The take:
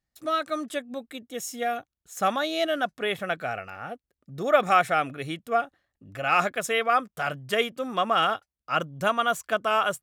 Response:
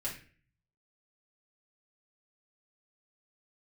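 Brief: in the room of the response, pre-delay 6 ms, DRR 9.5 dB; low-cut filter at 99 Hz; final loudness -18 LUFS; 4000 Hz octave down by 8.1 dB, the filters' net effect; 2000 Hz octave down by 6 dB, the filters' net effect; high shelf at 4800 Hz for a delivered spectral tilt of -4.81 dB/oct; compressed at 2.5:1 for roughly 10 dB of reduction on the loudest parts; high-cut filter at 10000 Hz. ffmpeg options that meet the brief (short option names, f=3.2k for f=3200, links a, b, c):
-filter_complex "[0:a]highpass=99,lowpass=10k,equalizer=f=2k:t=o:g=-7,equalizer=f=4k:t=o:g=-6,highshelf=f=4.8k:g=-4.5,acompressor=threshold=-30dB:ratio=2.5,asplit=2[a][b];[1:a]atrim=start_sample=2205,adelay=6[c];[b][c]afir=irnorm=-1:irlink=0,volume=-11.5dB[d];[a][d]amix=inputs=2:normalize=0,volume=15.5dB"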